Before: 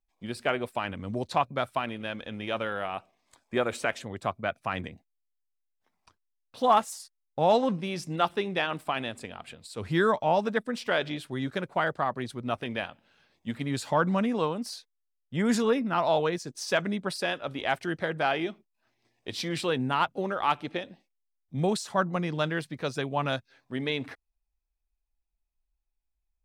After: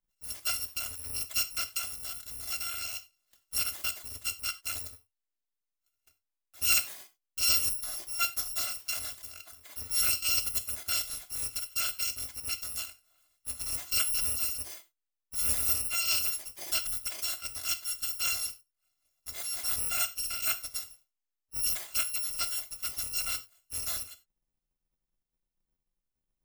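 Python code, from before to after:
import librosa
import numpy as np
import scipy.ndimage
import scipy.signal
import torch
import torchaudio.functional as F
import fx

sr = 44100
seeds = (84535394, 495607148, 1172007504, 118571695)

y = fx.bit_reversed(x, sr, seeds[0], block=256)
y = fx.rev_gated(y, sr, seeds[1], gate_ms=120, shape='falling', drr_db=8.5)
y = y * librosa.db_to_amplitude(-4.5)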